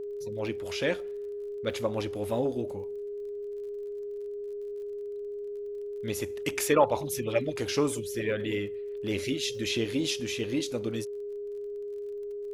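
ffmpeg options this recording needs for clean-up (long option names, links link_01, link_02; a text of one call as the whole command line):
ffmpeg -i in.wav -af "adeclick=threshold=4,bandreject=frequency=410:width=30,agate=range=-21dB:threshold=-29dB" out.wav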